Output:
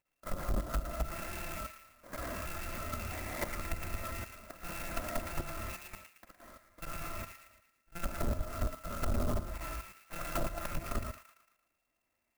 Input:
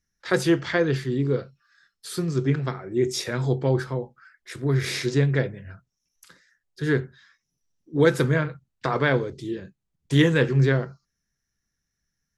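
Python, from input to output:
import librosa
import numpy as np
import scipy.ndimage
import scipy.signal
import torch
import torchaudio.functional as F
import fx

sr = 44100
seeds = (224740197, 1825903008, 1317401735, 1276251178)

p1 = fx.bit_reversed(x, sr, seeds[0], block=256)
p2 = fx.low_shelf(p1, sr, hz=450.0, db=-10.5)
p3 = fx.rev_gated(p2, sr, seeds[1], gate_ms=280, shape='rising', drr_db=-6.5)
p4 = fx.rider(p3, sr, range_db=4, speed_s=0.5)
p5 = p3 + (p4 * 10.0 ** (-3.0 / 20.0))
p6 = fx.freq_invert(p5, sr, carrier_hz=2700)
p7 = fx.level_steps(p6, sr, step_db=14)
p8 = fx.env_lowpass_down(p7, sr, base_hz=630.0, full_db=-27.5)
p9 = fx.air_absorb(p8, sr, metres=480.0)
p10 = fx.echo_wet_highpass(p9, sr, ms=113, feedback_pct=48, hz=2100.0, wet_db=-3.5)
p11 = 10.0 ** (-31.0 / 20.0) * np.tanh(p10 / 10.0 ** (-31.0 / 20.0))
p12 = fx.clock_jitter(p11, sr, seeds[2], jitter_ms=0.057)
y = p12 * 10.0 ** (5.0 / 20.0)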